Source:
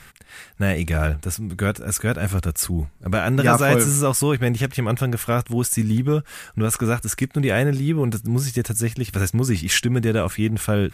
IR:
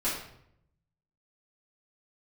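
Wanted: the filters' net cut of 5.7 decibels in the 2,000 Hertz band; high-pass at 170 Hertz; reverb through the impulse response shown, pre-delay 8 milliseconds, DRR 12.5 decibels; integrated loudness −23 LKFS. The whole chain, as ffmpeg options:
-filter_complex "[0:a]highpass=170,equalizer=frequency=2000:width_type=o:gain=-8,asplit=2[link_01][link_02];[1:a]atrim=start_sample=2205,adelay=8[link_03];[link_02][link_03]afir=irnorm=-1:irlink=0,volume=-20.5dB[link_04];[link_01][link_04]amix=inputs=2:normalize=0,volume=0.5dB"

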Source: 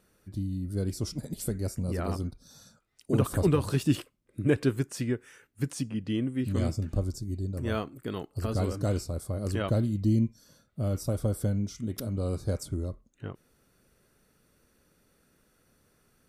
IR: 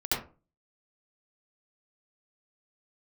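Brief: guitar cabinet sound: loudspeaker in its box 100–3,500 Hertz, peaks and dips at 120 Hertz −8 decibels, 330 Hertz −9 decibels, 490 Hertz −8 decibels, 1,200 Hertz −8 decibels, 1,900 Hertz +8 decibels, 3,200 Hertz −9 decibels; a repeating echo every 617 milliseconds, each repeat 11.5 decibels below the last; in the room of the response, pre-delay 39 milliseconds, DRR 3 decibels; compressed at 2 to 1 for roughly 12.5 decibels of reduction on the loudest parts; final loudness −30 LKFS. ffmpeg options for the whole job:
-filter_complex "[0:a]acompressor=threshold=-43dB:ratio=2,aecho=1:1:617|1234|1851:0.266|0.0718|0.0194,asplit=2[link_01][link_02];[1:a]atrim=start_sample=2205,adelay=39[link_03];[link_02][link_03]afir=irnorm=-1:irlink=0,volume=-11.5dB[link_04];[link_01][link_04]amix=inputs=2:normalize=0,highpass=100,equalizer=frequency=120:width_type=q:width=4:gain=-8,equalizer=frequency=330:width_type=q:width=4:gain=-9,equalizer=frequency=490:width_type=q:width=4:gain=-8,equalizer=frequency=1200:width_type=q:width=4:gain=-8,equalizer=frequency=1900:width_type=q:width=4:gain=8,equalizer=frequency=3200:width_type=q:width=4:gain=-9,lowpass=frequency=3500:width=0.5412,lowpass=frequency=3500:width=1.3066,volume=13dB"

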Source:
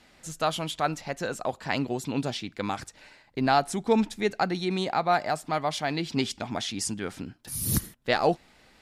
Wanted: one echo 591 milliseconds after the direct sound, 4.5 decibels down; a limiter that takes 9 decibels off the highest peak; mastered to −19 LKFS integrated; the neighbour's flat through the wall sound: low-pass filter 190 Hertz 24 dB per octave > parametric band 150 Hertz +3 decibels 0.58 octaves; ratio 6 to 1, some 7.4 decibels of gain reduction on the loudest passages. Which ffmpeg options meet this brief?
ffmpeg -i in.wav -af "acompressor=threshold=-25dB:ratio=6,alimiter=limit=-23.5dB:level=0:latency=1,lowpass=frequency=190:width=0.5412,lowpass=frequency=190:width=1.3066,equalizer=frequency=150:width_type=o:width=0.58:gain=3,aecho=1:1:591:0.596,volume=22.5dB" out.wav

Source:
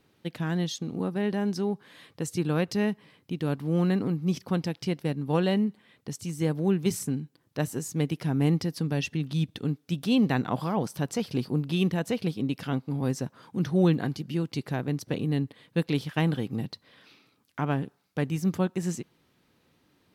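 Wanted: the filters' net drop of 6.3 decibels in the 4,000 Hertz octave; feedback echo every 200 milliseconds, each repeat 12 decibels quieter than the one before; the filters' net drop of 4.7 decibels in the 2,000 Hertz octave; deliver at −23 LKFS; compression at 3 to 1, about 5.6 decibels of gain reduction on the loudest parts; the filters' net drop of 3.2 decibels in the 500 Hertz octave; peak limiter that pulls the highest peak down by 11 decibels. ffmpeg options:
ffmpeg -i in.wav -af "equalizer=frequency=500:width_type=o:gain=-4,equalizer=frequency=2000:width_type=o:gain=-4,equalizer=frequency=4000:width_type=o:gain=-7,acompressor=threshold=-27dB:ratio=3,alimiter=level_in=4dB:limit=-24dB:level=0:latency=1,volume=-4dB,aecho=1:1:200|400|600:0.251|0.0628|0.0157,volume=14.5dB" out.wav

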